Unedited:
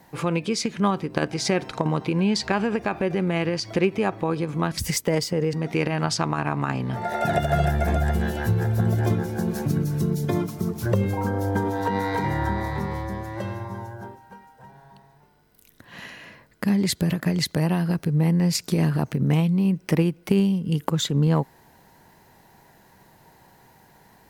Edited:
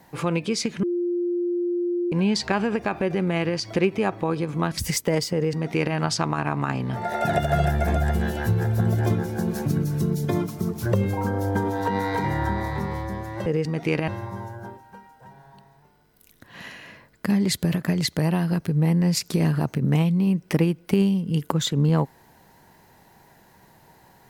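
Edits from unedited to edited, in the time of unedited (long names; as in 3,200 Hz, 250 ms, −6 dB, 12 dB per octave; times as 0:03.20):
0:00.83–0:02.12: beep over 350 Hz −21.5 dBFS
0:05.34–0:05.96: duplicate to 0:13.46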